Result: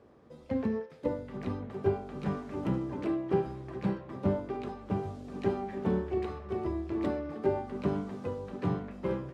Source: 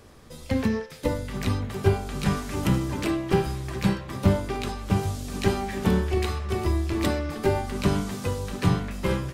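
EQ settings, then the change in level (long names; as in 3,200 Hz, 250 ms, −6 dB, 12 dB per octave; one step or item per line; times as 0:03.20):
resonant band-pass 410 Hz, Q 0.66
−4.0 dB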